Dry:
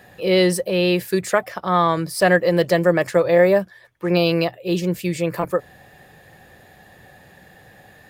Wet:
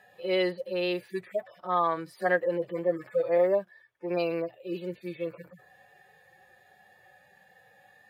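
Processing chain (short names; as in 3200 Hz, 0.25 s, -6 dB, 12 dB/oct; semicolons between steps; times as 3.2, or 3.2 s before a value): median-filter separation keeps harmonic; tone controls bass -15 dB, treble -5 dB; gain -7.5 dB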